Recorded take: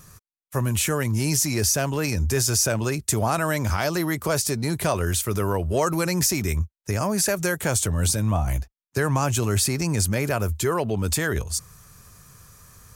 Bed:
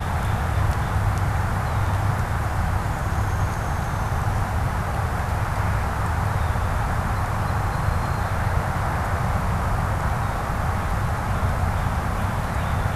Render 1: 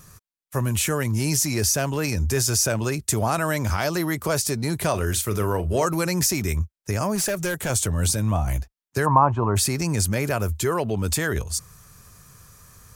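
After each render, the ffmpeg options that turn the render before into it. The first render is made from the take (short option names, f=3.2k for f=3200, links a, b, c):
-filter_complex "[0:a]asettb=1/sr,asplit=3[a][b][c];[a]atrim=end=4.904[d];[b]atrim=start=4.9:end=5.86,asetpts=PTS-STARTPTS,afade=t=in:d=0.004:c=qsin,afade=t=out:st=0.956:d=0.004:c=qsin,asplit=2[e][f];[f]adelay=38,volume=-12dB[g];[e][g]amix=inputs=2:normalize=0,atrim=end_sample=42336[h];[c]atrim=start=5.856[i];[d][h]acrossfade=d=0.004:c1=hsin:c2=qsin[j];[j][i]acrossfade=d=0.004:c1=qsin:c2=hsin,asettb=1/sr,asplit=3[k][l][m];[k]atrim=end=7.154[n];[l]atrim=start=7.15:end=7.7,asetpts=PTS-STARTPTS,afade=t=in:d=0.004:c=qsin,afade=t=out:st=0.546:d=0.004:c=qsin,asoftclip=type=hard:threshold=-20.5dB[o];[m]atrim=start=7.696[p];[n][o]acrossfade=d=0.004:c1=hsin:c2=qsin[q];[q][p]acrossfade=d=0.004:c1=qsin:c2=hsin,asplit=3[r][s][t];[r]afade=t=out:st=9.05:d=0.02[u];[s]lowpass=f=990:t=q:w=5.7,afade=t=in:st=9.05:d=0.02,afade=t=out:st=9.55:d=0.02[v];[t]afade=t=in:st=9.55:d=0.02[w];[u][v][w]amix=inputs=3:normalize=0"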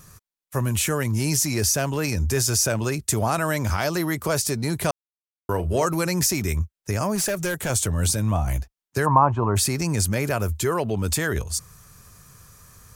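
-filter_complex "[0:a]asplit=3[a][b][c];[a]atrim=end=4.91,asetpts=PTS-STARTPTS,afade=t=out:st=4.906:d=0.004:c=hsin[d];[b]atrim=start=4.91:end=5.49,asetpts=PTS-STARTPTS,volume=0[e];[c]atrim=start=5.49,asetpts=PTS-STARTPTS,afade=t=in:d=0.004:c=hsin[f];[d][e][f]concat=n=3:v=0:a=1"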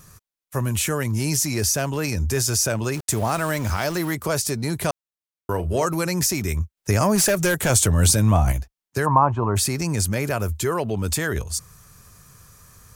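-filter_complex "[0:a]asettb=1/sr,asplit=3[a][b][c];[a]atrim=end=2.944[d];[b]atrim=start=2.94:end=4.15,asetpts=PTS-STARTPTS,afade=t=in:d=0.004:c=qsin,afade=t=out:st=1.206:d=0.004:c=qsin,aeval=exprs='val(0)*gte(abs(val(0)),0.0237)':c=same[e];[c]atrim=start=4.146[f];[d][e]acrossfade=d=0.004:c1=hsin:c2=qsin[g];[g][f]acrossfade=d=0.004:c1=qsin:c2=hsin,asettb=1/sr,asplit=3[h][i][j];[h]atrim=end=6.774[k];[i]atrim=start=6.77:end=8.52,asetpts=PTS-STARTPTS,afade=t=in:d=0.004:c=qsin,afade=t=out:st=1.746:d=0.004:c=qsin,acontrast=44[l];[j]atrim=start=8.516[m];[k][l]acrossfade=d=0.004:c1=hsin:c2=qsin[n];[n][m]acrossfade=d=0.004:c1=qsin:c2=hsin"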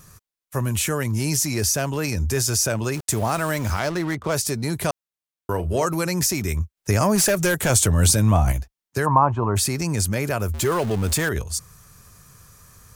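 -filter_complex "[0:a]asettb=1/sr,asplit=3[a][b][c];[a]atrim=end=3.794[d];[b]atrim=start=3.79:end=4.34,asetpts=PTS-STARTPTS,afade=t=in:d=0.004:c=qsin,afade=t=out:st=0.546:d=0.004:c=qsin,adynamicsmooth=sensitivity=6.5:basefreq=740[e];[c]atrim=start=4.336[f];[d][e]acrossfade=d=0.004:c1=hsin:c2=qsin[g];[g][f]acrossfade=d=0.004:c1=qsin:c2=hsin,asettb=1/sr,asplit=3[h][i][j];[h]atrim=end=10.544[k];[i]atrim=start=10.54:end=11.29,asetpts=PTS-STARTPTS,afade=t=in:d=0.004:c=qsin,afade=t=out:st=0.746:d=0.004:c=qsin,aeval=exprs='val(0)+0.5*0.0422*sgn(val(0))':c=same[l];[j]atrim=start=11.286[m];[k][l]acrossfade=d=0.004:c1=hsin:c2=qsin[n];[n][m]acrossfade=d=0.004:c1=qsin:c2=hsin"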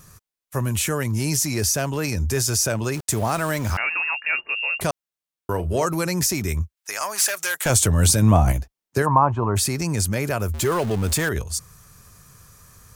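-filter_complex "[0:a]asettb=1/sr,asplit=3[a][b][c];[a]atrim=end=3.774[d];[b]atrim=start=3.77:end=4.81,asetpts=PTS-STARTPTS,afade=t=in:d=0.004:c=qsin,afade=t=out:st=1.036:d=0.004:c=qsin,lowpass=f=2.5k:t=q:w=0.5098,lowpass=f=2.5k:t=q:w=0.6013,lowpass=f=2.5k:t=q:w=0.9,lowpass=f=2.5k:t=q:w=2.563,afreqshift=-2900[e];[c]atrim=start=4.806[f];[d][e]acrossfade=d=0.004:c1=hsin:c2=qsin[g];[g][f]acrossfade=d=0.004:c1=qsin:c2=hsin,asettb=1/sr,asplit=3[h][i][j];[h]atrim=end=6.754[k];[i]atrim=start=6.75:end=7.66,asetpts=PTS-STARTPTS,afade=t=in:d=0.004:c=qsin,afade=t=out:st=0.906:d=0.004:c=qsin,highpass=1.1k[l];[j]atrim=start=7.656[m];[k][l]acrossfade=d=0.004:c1=hsin:c2=qsin[n];[n][m]acrossfade=d=0.004:c1=qsin:c2=hsin,asettb=1/sr,asplit=3[o][p][q];[o]atrim=end=8.224[r];[p]atrim=start=8.22:end=9.02,asetpts=PTS-STARTPTS,afade=t=in:d=0.004:c=qsin,afade=t=out:st=0.796:d=0.004:c=qsin,equalizer=f=350:w=0.46:g=4.5[s];[q]atrim=start=9.016[t];[r][s]acrossfade=d=0.004:c1=hsin:c2=qsin[u];[u][t]acrossfade=d=0.004:c1=qsin:c2=hsin"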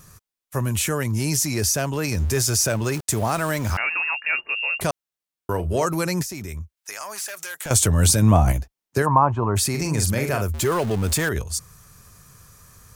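-filter_complex "[0:a]asettb=1/sr,asplit=3[a][b][c];[a]atrim=end=2.114[d];[b]atrim=start=2.11:end=2.98,asetpts=PTS-STARTPTS,afade=t=in:d=0.004:c=qsin,afade=t=out:st=0.866:d=0.004:c=qsin,aeval=exprs='val(0)+0.5*0.02*sgn(val(0))':c=same[e];[c]atrim=start=2.976[f];[d][e]acrossfade=d=0.004:c1=hsin:c2=qsin[g];[g][f]acrossfade=d=0.004:c1=qsin:c2=hsin,asettb=1/sr,asplit=3[h][i][j];[h]atrim=end=6.224[k];[i]atrim=start=6.22:end=7.71,asetpts=PTS-STARTPTS,afade=t=in:d=0.004:c=qsin,afade=t=out:st=1.486:d=0.004:c=qsin,acompressor=threshold=-30dB:ratio=4:attack=3.2:release=140:knee=1:detection=peak[l];[j]atrim=start=7.706[m];[k][l]acrossfade=d=0.004:c1=hsin:c2=qsin[n];[n][m]acrossfade=d=0.004:c1=qsin:c2=hsin,asettb=1/sr,asplit=3[o][p][q];[o]atrim=end=9.704[r];[p]atrim=start=9.7:end=10.42,asetpts=PTS-STARTPTS,afade=t=in:d=0.004:c=qsin,afade=t=out:st=0.716:d=0.004:c=qsin,asplit=2[s][t];[t]adelay=44,volume=-5.5dB[u];[s][u]amix=inputs=2:normalize=0,atrim=end_sample=31752[v];[q]atrim=start=10.416[w];[r][v]acrossfade=d=0.004:c1=hsin:c2=qsin[x];[x][w]acrossfade=d=0.004:c1=qsin:c2=hsin"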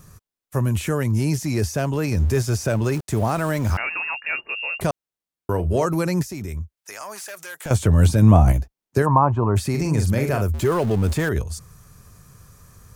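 -filter_complex "[0:a]acrossover=split=3300[a][b];[b]acompressor=threshold=-28dB:ratio=4:attack=1:release=60[c];[a][c]amix=inputs=2:normalize=0,tiltshelf=f=830:g=3.5"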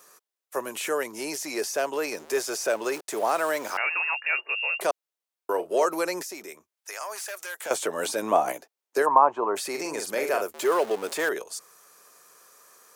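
-af "highpass=f=400:w=0.5412,highpass=f=400:w=1.3066"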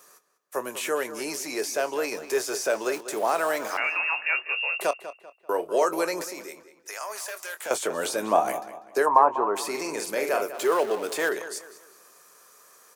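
-filter_complex "[0:a]asplit=2[a][b];[b]adelay=24,volume=-13dB[c];[a][c]amix=inputs=2:normalize=0,asplit=2[d][e];[e]adelay=195,lowpass=f=4.5k:p=1,volume=-13dB,asplit=2[f][g];[g]adelay=195,lowpass=f=4.5k:p=1,volume=0.36,asplit=2[h][i];[i]adelay=195,lowpass=f=4.5k:p=1,volume=0.36,asplit=2[j][k];[k]adelay=195,lowpass=f=4.5k:p=1,volume=0.36[l];[d][f][h][j][l]amix=inputs=5:normalize=0"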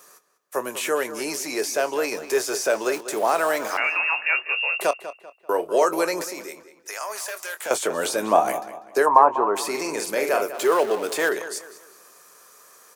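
-af "volume=3.5dB"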